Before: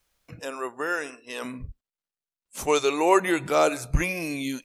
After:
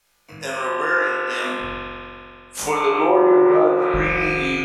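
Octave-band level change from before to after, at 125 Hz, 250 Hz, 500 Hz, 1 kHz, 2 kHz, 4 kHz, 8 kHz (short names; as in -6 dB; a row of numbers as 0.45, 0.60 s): +2.5, +8.5, +7.5, +6.5, +8.0, +3.0, +1.0 dB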